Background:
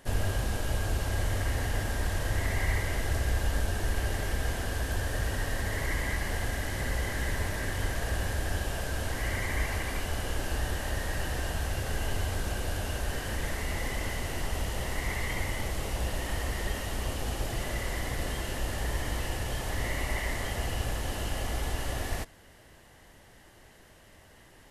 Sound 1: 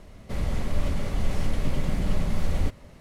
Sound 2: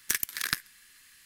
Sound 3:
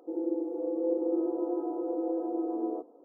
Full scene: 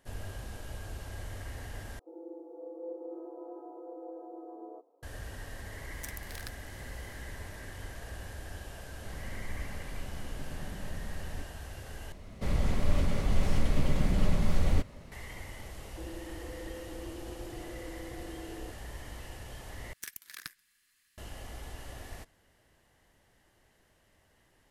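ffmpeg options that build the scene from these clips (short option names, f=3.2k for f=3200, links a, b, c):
-filter_complex "[3:a]asplit=2[a][b];[2:a]asplit=2[c][d];[1:a]asplit=2[e][f];[0:a]volume=-12dB[g];[a]highpass=520[h];[c]acompressor=threshold=-40dB:ratio=2.5:attack=6.8:release=398:knee=1:detection=peak[i];[b]acompressor=threshold=-30dB:ratio=6:attack=3.2:release=140:knee=1:detection=peak[j];[g]asplit=4[k][l][m][n];[k]atrim=end=1.994[o];[h]atrim=end=3.04,asetpts=PTS-STARTPTS,volume=-7.5dB[p];[l]atrim=start=5.026:end=12.124[q];[f]atrim=end=3,asetpts=PTS-STARTPTS,volume=-1dB[r];[m]atrim=start=15.116:end=19.934[s];[d]atrim=end=1.25,asetpts=PTS-STARTPTS,volume=-14.5dB[t];[n]atrim=start=21.176[u];[i]atrim=end=1.25,asetpts=PTS-STARTPTS,volume=-6dB,afade=t=in:d=0.004:c=hsin,afade=t=out:st=1.246:d=0.004:c=hsin,adelay=5940[v];[e]atrim=end=3,asetpts=PTS-STARTPTS,volume=-15.5dB,afade=t=in:d=0.004:c=hsin,afade=t=out:st=2.996:d=0.004:c=hsin,adelay=385434S[w];[j]atrim=end=3.04,asetpts=PTS-STARTPTS,volume=-11dB,afade=t=in:d=0.004:c=hsin,afade=t=out:st=3.036:d=0.004:c=hsin,adelay=15900[x];[o][p]acrossfade=d=0.004:c1=hsin:c2=hsin[y];[y][q]acrossfade=d=0.004:c1=hsin:c2=hsin[z];[z][r]acrossfade=d=0.004:c1=hsin:c2=hsin[aa];[aa][s]acrossfade=d=0.004:c1=hsin:c2=hsin[ab];[ab][t]acrossfade=d=0.004:c1=hsin:c2=hsin[ac];[ac][u]acrossfade=d=0.004:c1=hsin:c2=hsin[ad];[ad][v][w][x]amix=inputs=4:normalize=0"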